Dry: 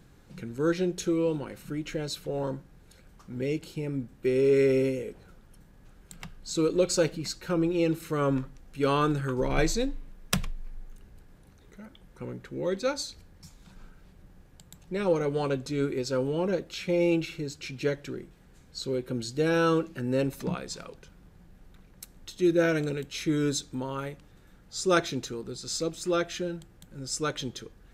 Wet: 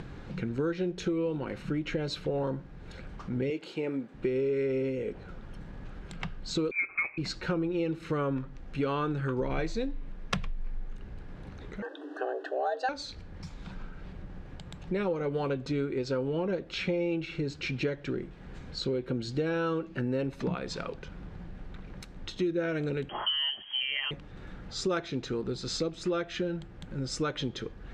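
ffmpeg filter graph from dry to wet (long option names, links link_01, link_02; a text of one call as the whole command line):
ffmpeg -i in.wav -filter_complex "[0:a]asettb=1/sr,asplit=3[link_01][link_02][link_03];[link_01]atrim=end=3.504[link_04];[link_02]atrim=start=3.5:end=4.14,asetpts=PTS-STARTPTS,afade=type=in:duration=0.004:curve=qsin,afade=type=out:start_time=0.636:duration=0.004:curve=qsin,highpass=340,bandreject=frequency=5400:width=15[link_05];[link_03]atrim=start=4.136[link_06];[link_04][link_05]acrossfade=duration=0.004:curve1=hsin:curve2=qsin[link_07];[link_07][link_06]acrossfade=duration=0.004:curve1=qsin:curve2=hsin,asettb=1/sr,asplit=3[link_08][link_09][link_10];[link_08]atrim=end=6.714[link_11];[link_09]atrim=start=6.71:end=7.18,asetpts=PTS-STARTPTS,afade=type=in:duration=0.004:curve=qsin,afade=type=out:start_time=0.466:duration=0.004:curve=qsin,highpass=frequency=320:poles=1,lowpass=frequency=2300:width_type=q:width=0.5098,lowpass=frequency=2300:width_type=q:width=0.6013,lowpass=frequency=2300:width_type=q:width=0.9,lowpass=frequency=2300:width_type=q:width=2.563,afreqshift=-2700[link_12];[link_10]atrim=start=7.176[link_13];[link_11][link_12]acrossfade=duration=0.004:curve1=hsin:curve2=qsin[link_14];[link_14][link_13]acrossfade=duration=0.004:curve1=qsin:curve2=hsin,asettb=1/sr,asplit=3[link_15][link_16][link_17];[link_15]atrim=end=11.824[link_18];[link_16]atrim=start=11.82:end=12.89,asetpts=PTS-STARTPTS,afade=type=in:duration=0.004:curve=qsin,afade=type=out:start_time=1.066:duration=0.004:curve=qsin,equalizer=frequency=1300:width=5.4:gain=9,afreqshift=260,asuperstop=centerf=2200:order=12:qfactor=3.2[link_19];[link_17]atrim=start=12.886[link_20];[link_18][link_19]acrossfade=duration=0.004:curve1=hsin:curve2=qsin[link_21];[link_21][link_20]acrossfade=duration=0.004:curve1=qsin:curve2=hsin,asettb=1/sr,asplit=3[link_22][link_23][link_24];[link_22]atrim=end=23.094[link_25];[link_23]atrim=start=23.09:end=24.11,asetpts=PTS-STARTPTS,afade=type=in:duration=0.004:curve=qsin,afade=type=out:start_time=1.016:duration=0.004:curve=qsin,acompressor=mode=upward:threshold=-38dB:ratio=2.5:attack=3.2:release=140:knee=2.83:detection=peak,lowpass=frequency=2800:width_type=q:width=0.5098,lowpass=frequency=2800:width_type=q:width=0.6013,lowpass=frequency=2800:width_type=q:width=0.9,lowpass=frequency=2800:width_type=q:width=2.563,afreqshift=-3300[link_26];[link_24]atrim=start=24.106[link_27];[link_25][link_26]acrossfade=duration=0.004:curve1=hsin:curve2=qsin[link_28];[link_28][link_27]acrossfade=duration=0.004:curve1=qsin:curve2=hsin,acompressor=mode=upward:threshold=-42dB:ratio=2.5,lowpass=3400,acompressor=threshold=-35dB:ratio=6,volume=7dB" out.wav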